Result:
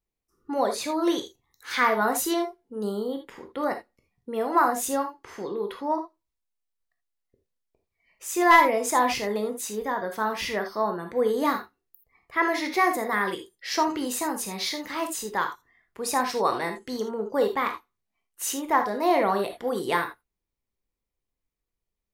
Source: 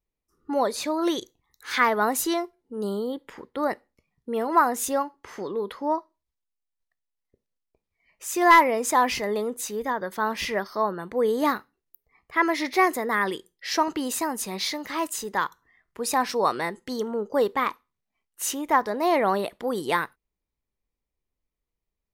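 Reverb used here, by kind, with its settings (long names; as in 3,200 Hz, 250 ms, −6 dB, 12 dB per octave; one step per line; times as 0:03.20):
reverb whose tail is shaped and stops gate 100 ms flat, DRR 4.5 dB
level −2 dB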